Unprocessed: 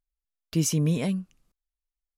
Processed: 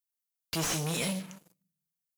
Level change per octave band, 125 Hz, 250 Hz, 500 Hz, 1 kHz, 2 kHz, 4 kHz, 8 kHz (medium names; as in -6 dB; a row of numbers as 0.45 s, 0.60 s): -10.0 dB, -9.5 dB, -4.0 dB, +7.0 dB, +5.0 dB, +3.0 dB, -2.5 dB